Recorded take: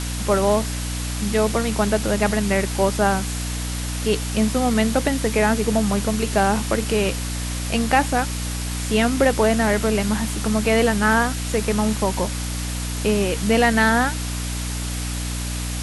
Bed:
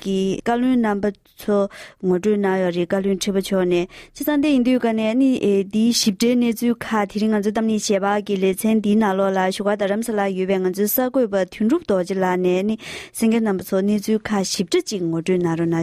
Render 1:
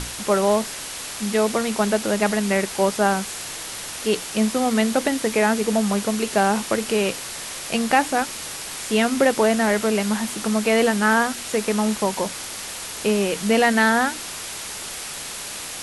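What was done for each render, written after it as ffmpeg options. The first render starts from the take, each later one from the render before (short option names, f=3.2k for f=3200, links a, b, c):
-af "bandreject=f=60:t=h:w=6,bandreject=f=120:t=h:w=6,bandreject=f=180:t=h:w=6,bandreject=f=240:t=h:w=6,bandreject=f=300:t=h:w=6"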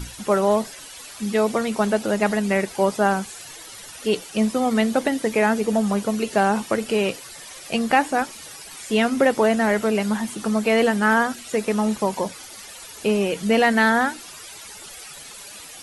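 -af "afftdn=nr=13:nf=-33"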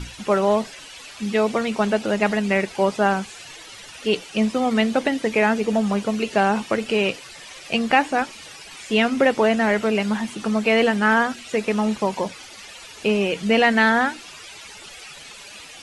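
-af "lowpass=6.7k,equalizer=f=2.6k:w=2:g=5"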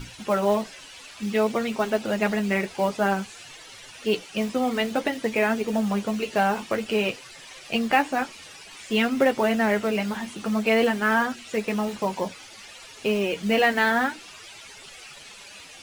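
-af "acrusher=bits=6:mode=log:mix=0:aa=0.000001,flanger=delay=7.5:depth=4.1:regen=-37:speed=0.54:shape=sinusoidal"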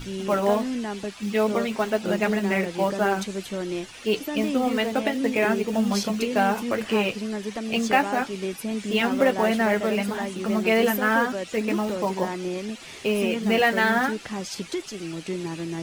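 -filter_complex "[1:a]volume=-11.5dB[a];[0:a][a]amix=inputs=2:normalize=0"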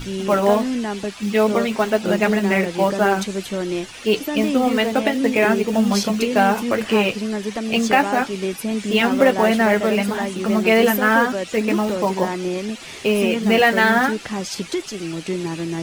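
-af "volume=5.5dB,alimiter=limit=-2dB:level=0:latency=1"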